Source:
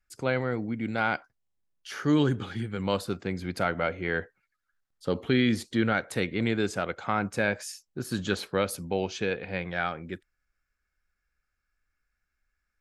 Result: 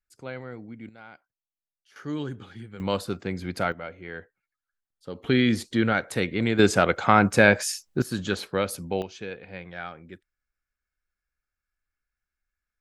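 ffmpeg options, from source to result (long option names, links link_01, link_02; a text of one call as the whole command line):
ffmpeg -i in.wav -af "asetnsamples=nb_out_samples=441:pad=0,asendcmd='0.89 volume volume -20dB;1.96 volume volume -8.5dB;2.8 volume volume 1dB;3.72 volume volume -9dB;5.24 volume volume 2.5dB;6.59 volume volume 10dB;8.02 volume volume 1dB;9.02 volume volume -7dB',volume=-9.5dB" out.wav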